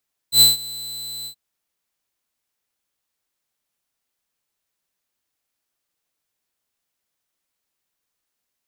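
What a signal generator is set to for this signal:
note with an ADSR envelope saw 4,020 Hz, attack 90 ms, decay 156 ms, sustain −22 dB, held 0.94 s, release 86 ms −5 dBFS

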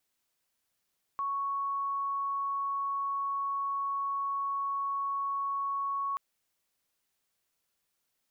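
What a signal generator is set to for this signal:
tone sine 1,110 Hz −29.5 dBFS 4.98 s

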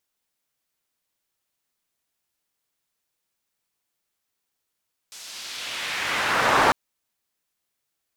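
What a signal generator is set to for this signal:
filter sweep on noise pink, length 1.60 s bandpass, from 6,200 Hz, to 900 Hz, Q 1.2, exponential, gain ramp +25 dB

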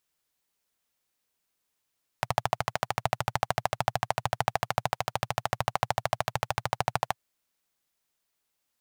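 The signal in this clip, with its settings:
pulse-train model of a single-cylinder engine, steady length 4.92 s, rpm 1,600, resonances 120/740 Hz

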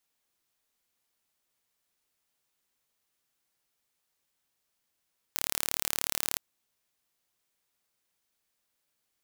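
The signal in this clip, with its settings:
impulse train 36.7 per second, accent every 0, −2 dBFS 1.01 s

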